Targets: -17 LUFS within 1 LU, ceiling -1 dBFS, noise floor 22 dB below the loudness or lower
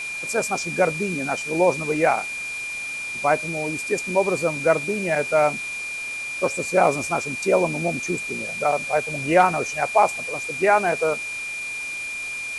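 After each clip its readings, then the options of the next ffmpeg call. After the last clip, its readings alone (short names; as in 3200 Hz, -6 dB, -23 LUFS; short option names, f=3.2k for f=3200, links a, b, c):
steady tone 2400 Hz; tone level -28 dBFS; noise floor -31 dBFS; noise floor target -45 dBFS; loudness -22.5 LUFS; peak -4.5 dBFS; loudness target -17.0 LUFS
-> -af "bandreject=f=2.4k:w=30"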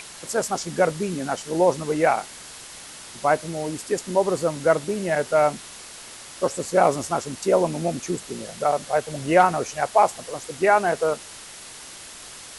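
steady tone none; noise floor -41 dBFS; noise floor target -45 dBFS
-> -af "afftdn=nr=6:nf=-41"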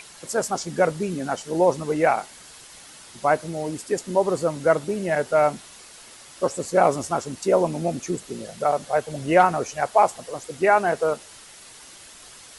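noise floor -46 dBFS; loudness -23.0 LUFS; peak -5.0 dBFS; loudness target -17.0 LUFS
-> -af "volume=6dB,alimiter=limit=-1dB:level=0:latency=1"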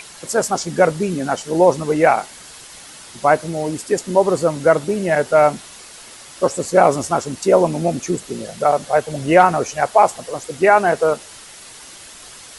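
loudness -17.5 LUFS; peak -1.0 dBFS; noise floor -40 dBFS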